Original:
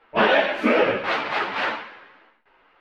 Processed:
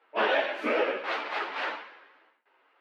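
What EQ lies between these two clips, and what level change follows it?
HPF 290 Hz 24 dB/oct; -7.5 dB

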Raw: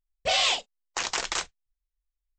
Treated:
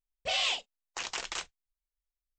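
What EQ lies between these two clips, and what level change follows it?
dynamic EQ 2800 Hz, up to +5 dB, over -37 dBFS, Q 2.3; -8.5 dB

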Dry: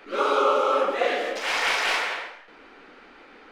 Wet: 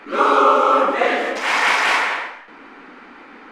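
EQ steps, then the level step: ten-band EQ 125 Hz +4 dB, 250 Hz +11 dB, 1000 Hz +9 dB, 2000 Hz +6 dB, 8000 Hz +5 dB; 0.0 dB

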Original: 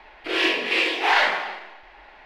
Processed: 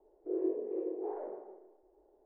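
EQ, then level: ladder low-pass 430 Hz, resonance 55%; air absorption 79 m; resonant low shelf 320 Hz -11 dB, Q 1.5; 0.0 dB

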